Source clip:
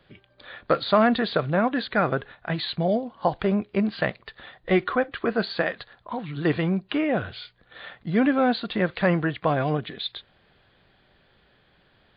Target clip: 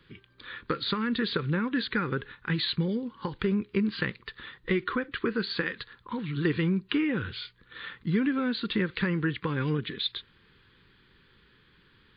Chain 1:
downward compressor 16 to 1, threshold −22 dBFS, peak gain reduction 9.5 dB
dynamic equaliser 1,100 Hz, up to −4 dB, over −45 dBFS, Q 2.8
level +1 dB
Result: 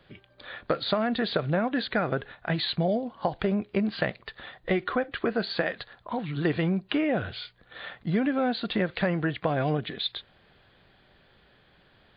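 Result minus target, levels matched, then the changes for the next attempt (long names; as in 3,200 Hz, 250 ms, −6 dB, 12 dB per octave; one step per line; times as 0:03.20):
500 Hz band +4.0 dB
add after dynamic equaliser: Butterworth band-reject 670 Hz, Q 1.3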